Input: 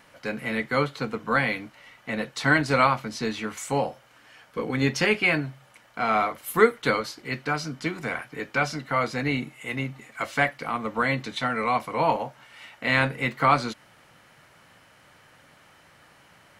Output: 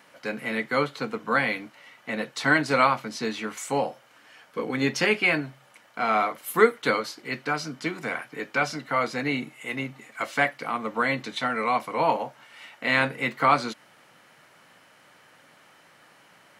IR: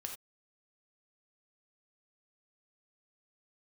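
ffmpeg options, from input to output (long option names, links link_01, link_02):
-af "highpass=180"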